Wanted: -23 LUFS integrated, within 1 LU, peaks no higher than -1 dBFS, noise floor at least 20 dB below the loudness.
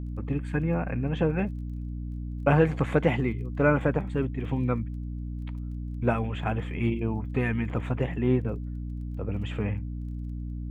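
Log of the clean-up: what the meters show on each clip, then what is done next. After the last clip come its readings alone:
tick rate 18 per s; hum 60 Hz; highest harmonic 300 Hz; hum level -31 dBFS; loudness -28.5 LUFS; peak level -8.0 dBFS; loudness target -23.0 LUFS
-> de-click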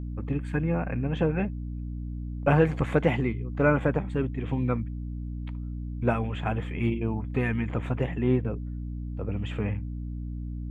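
tick rate 0 per s; hum 60 Hz; highest harmonic 300 Hz; hum level -31 dBFS
-> de-hum 60 Hz, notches 5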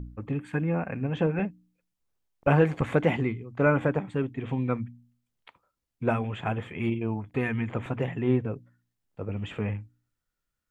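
hum not found; loudness -28.5 LUFS; peak level -8.5 dBFS; loudness target -23.0 LUFS
-> trim +5.5 dB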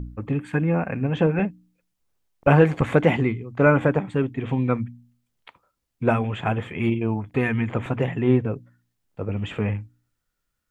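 loudness -23.0 LUFS; peak level -3.0 dBFS; noise floor -78 dBFS

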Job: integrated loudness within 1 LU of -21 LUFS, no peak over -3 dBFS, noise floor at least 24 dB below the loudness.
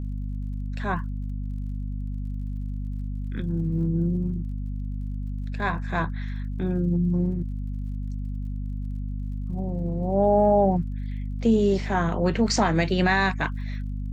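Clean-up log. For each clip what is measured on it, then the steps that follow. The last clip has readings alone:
tick rate 45 per s; hum 50 Hz; highest harmonic 250 Hz; hum level -27 dBFS; loudness -26.5 LUFS; peak level -9.0 dBFS; loudness target -21.0 LUFS
-> de-click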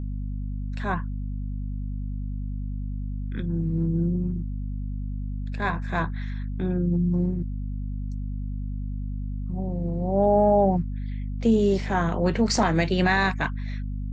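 tick rate 0 per s; hum 50 Hz; highest harmonic 250 Hz; hum level -28 dBFS
-> hum notches 50/100/150/200/250 Hz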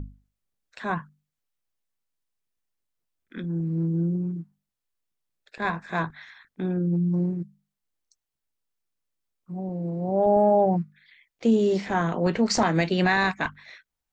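hum not found; loudness -25.0 LUFS; peak level -10.0 dBFS; loudness target -21.0 LUFS
-> trim +4 dB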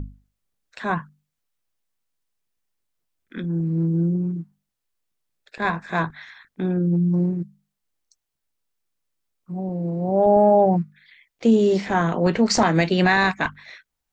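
loudness -21.0 LUFS; peak level -6.0 dBFS; noise floor -81 dBFS

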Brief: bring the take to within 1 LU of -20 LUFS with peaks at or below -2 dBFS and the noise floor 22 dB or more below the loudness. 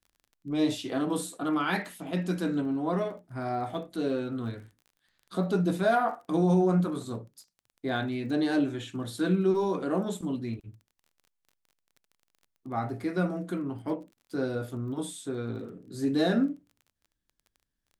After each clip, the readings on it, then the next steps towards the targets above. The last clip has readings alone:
tick rate 24 per s; loudness -30.0 LUFS; peak level -14.0 dBFS; loudness target -20.0 LUFS
-> de-click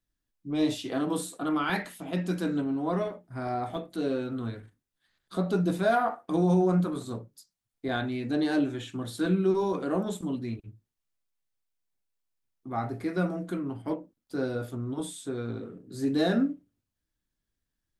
tick rate 0 per s; loudness -30.0 LUFS; peak level -14.0 dBFS; loudness target -20.0 LUFS
-> trim +10 dB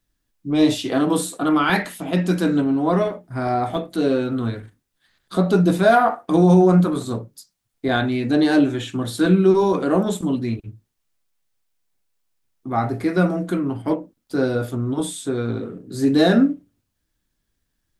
loudness -20.0 LUFS; peak level -4.0 dBFS; noise floor -75 dBFS

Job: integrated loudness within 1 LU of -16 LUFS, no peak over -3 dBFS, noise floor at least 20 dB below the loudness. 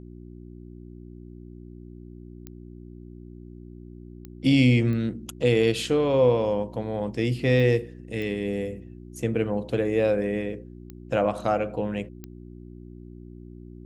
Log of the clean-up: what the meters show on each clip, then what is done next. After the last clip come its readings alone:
clicks found 7; hum 60 Hz; highest harmonic 360 Hz; hum level -39 dBFS; loudness -24.5 LUFS; peak level -7.0 dBFS; loudness target -16.0 LUFS
-> de-click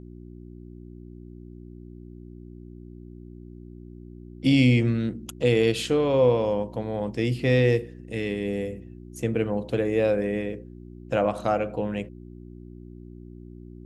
clicks found 0; hum 60 Hz; highest harmonic 360 Hz; hum level -39 dBFS
-> de-hum 60 Hz, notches 6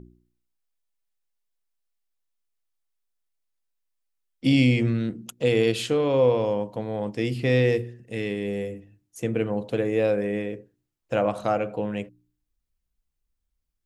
hum not found; loudness -25.0 LUFS; peak level -7.5 dBFS; loudness target -16.0 LUFS
-> trim +9 dB; peak limiter -3 dBFS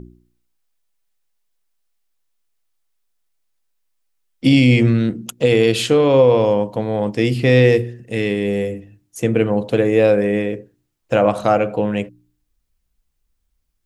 loudness -16.5 LUFS; peak level -3.0 dBFS; noise floor -71 dBFS

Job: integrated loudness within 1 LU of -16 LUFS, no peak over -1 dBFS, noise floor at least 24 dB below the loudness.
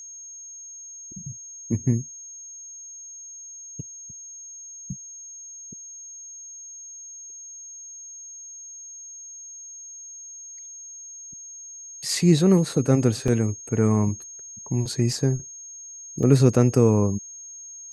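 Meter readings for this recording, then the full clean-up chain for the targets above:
dropouts 3; longest dropout 1.7 ms; steady tone 6.5 kHz; tone level -38 dBFS; loudness -22.5 LUFS; peak level -4.0 dBFS; loudness target -16.0 LUFS
-> interpolate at 13.28/15.13/16.23 s, 1.7 ms; band-stop 6.5 kHz, Q 30; trim +6.5 dB; peak limiter -1 dBFS

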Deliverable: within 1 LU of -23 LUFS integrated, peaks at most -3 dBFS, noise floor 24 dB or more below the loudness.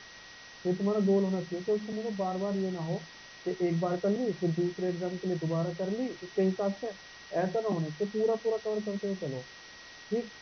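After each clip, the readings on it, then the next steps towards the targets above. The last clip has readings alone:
steady tone 1.9 kHz; tone level -52 dBFS; noise floor -50 dBFS; noise floor target -56 dBFS; loudness -32.0 LUFS; peak level -17.0 dBFS; loudness target -23.0 LUFS
-> band-stop 1.9 kHz, Q 30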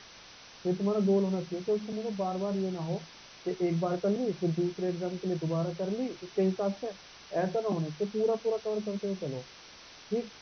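steady tone not found; noise floor -52 dBFS; noise floor target -56 dBFS
-> noise print and reduce 6 dB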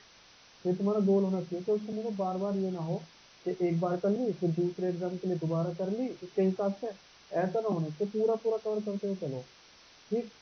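noise floor -58 dBFS; loudness -32.0 LUFS; peak level -17.0 dBFS; loudness target -23.0 LUFS
-> trim +9 dB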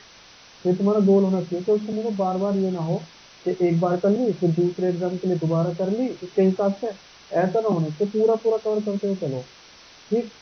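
loudness -23.0 LUFS; peak level -8.0 dBFS; noise floor -49 dBFS

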